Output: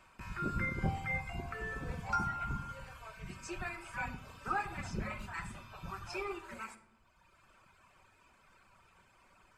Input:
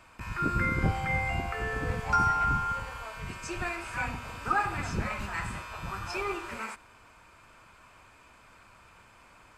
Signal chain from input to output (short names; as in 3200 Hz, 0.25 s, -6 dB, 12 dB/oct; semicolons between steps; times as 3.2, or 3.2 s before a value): reverb removal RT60 1.4 s; shoebox room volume 2800 m³, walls furnished, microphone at 1.1 m; gain -6.5 dB